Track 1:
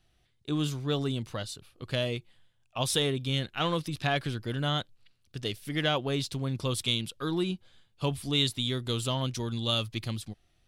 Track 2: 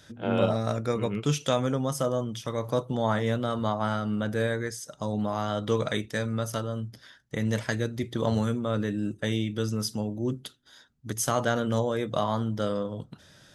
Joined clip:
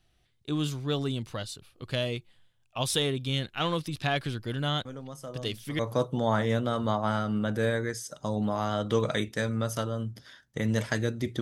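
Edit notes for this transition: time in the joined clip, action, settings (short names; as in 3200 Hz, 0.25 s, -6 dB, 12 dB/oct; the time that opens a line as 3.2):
track 1
4.85 add track 2 from 1.62 s 0.94 s -13.5 dB
5.79 switch to track 2 from 2.56 s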